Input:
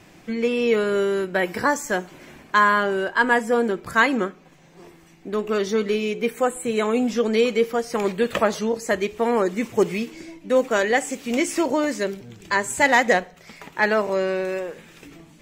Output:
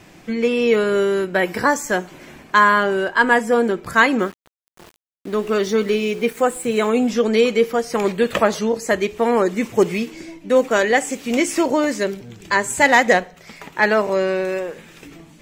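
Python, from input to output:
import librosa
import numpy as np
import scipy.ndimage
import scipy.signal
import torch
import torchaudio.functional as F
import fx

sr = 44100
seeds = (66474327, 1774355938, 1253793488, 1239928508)

y = fx.sample_gate(x, sr, floor_db=-40.5, at=(4.19, 6.9))
y = y * 10.0 ** (3.5 / 20.0)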